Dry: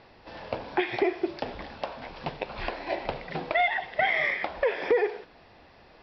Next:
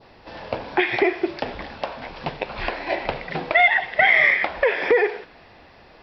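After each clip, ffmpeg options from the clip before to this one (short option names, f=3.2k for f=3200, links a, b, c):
-af "adynamicequalizer=threshold=0.0112:dfrequency=2000:dqfactor=1.1:tfrequency=2000:tqfactor=1.1:attack=5:release=100:ratio=0.375:range=3:mode=boostabove:tftype=bell,volume=5dB"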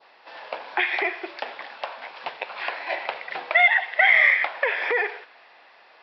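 -af "highpass=790,lowpass=4.3k"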